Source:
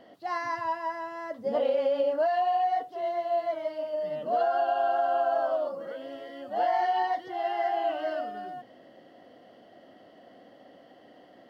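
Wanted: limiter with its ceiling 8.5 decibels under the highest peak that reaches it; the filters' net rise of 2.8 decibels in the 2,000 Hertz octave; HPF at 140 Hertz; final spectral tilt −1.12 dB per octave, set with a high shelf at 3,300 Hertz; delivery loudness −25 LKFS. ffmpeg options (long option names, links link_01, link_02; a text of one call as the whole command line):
ffmpeg -i in.wav -af "highpass=140,equalizer=frequency=2000:width_type=o:gain=4.5,highshelf=frequency=3300:gain=-4,volume=7dB,alimiter=limit=-17dB:level=0:latency=1" out.wav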